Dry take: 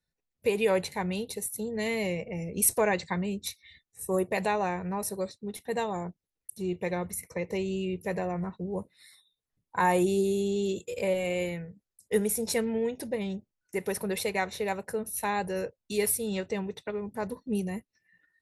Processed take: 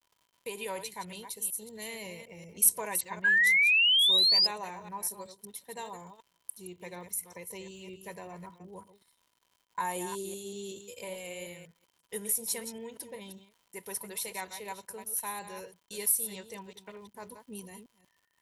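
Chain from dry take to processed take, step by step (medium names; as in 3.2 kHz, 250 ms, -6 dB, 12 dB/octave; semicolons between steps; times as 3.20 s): chunks repeated in reverse 188 ms, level -9 dB; pre-emphasis filter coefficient 0.8; gate -52 dBFS, range -27 dB; bass shelf 150 Hz -4 dB; reverse; upward compressor, threshold -57 dBFS; reverse; crackle 200 per s -55 dBFS; small resonant body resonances 980/3100 Hz, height 13 dB, ringing for 45 ms; painted sound rise, 3.24–4.47 s, 1.6–5.1 kHz -23 dBFS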